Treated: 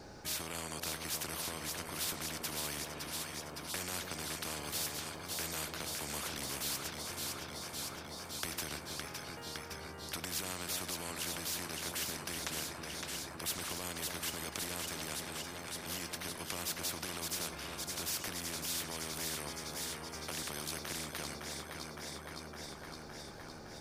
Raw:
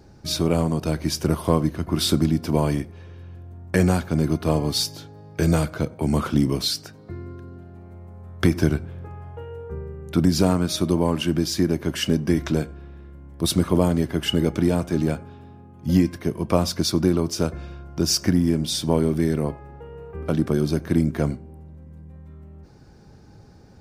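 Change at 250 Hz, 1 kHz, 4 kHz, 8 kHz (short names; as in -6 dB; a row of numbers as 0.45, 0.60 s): -25.5, -11.5, -10.0, -5.0 dB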